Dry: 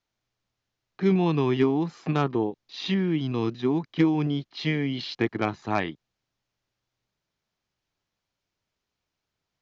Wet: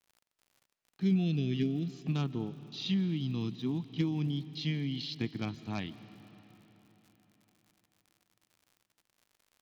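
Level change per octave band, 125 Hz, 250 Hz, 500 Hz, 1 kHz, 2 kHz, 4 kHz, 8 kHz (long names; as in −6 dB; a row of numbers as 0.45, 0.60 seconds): −4.0 dB, −7.0 dB, −15.0 dB, −17.5 dB, −12.5 dB, −4.5 dB, can't be measured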